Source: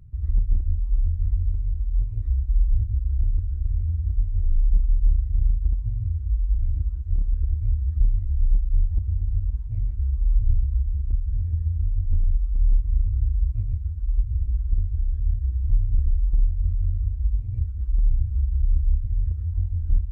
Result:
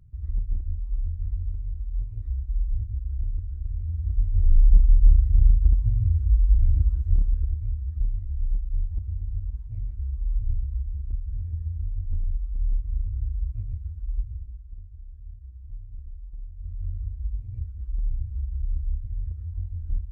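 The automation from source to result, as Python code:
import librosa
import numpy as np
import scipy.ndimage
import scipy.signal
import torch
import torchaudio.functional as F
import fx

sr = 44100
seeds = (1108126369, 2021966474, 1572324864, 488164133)

y = fx.gain(x, sr, db=fx.line((3.8, -6.0), (4.52, 4.0), (7.05, 4.0), (7.71, -6.0), (14.2, -6.0), (14.63, -18.5), (16.46, -18.5), (16.87, -7.0)))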